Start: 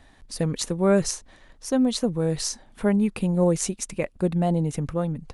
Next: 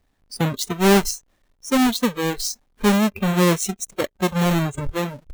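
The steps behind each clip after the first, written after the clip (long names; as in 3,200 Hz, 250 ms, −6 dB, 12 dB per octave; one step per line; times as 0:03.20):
each half-wave held at its own peak
noise reduction from a noise print of the clip's start 18 dB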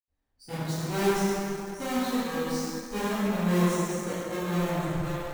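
convolution reverb RT60 3.3 s, pre-delay 77 ms
in parallel at −8.5 dB: centre clipping without the shift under −37 dBFS
on the sum: level +3 dB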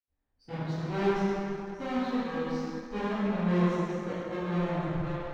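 high-frequency loss of the air 230 metres
level −1.5 dB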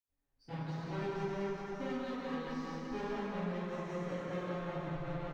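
comb filter 7.2 ms, depth 46%
downward compressor, threshold −32 dBFS, peak gain reduction 11.5 dB
multi-tap delay 179/391 ms −5/−5.5 dB
level −4.5 dB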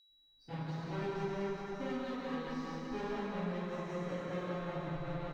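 steady tone 3,900 Hz −65 dBFS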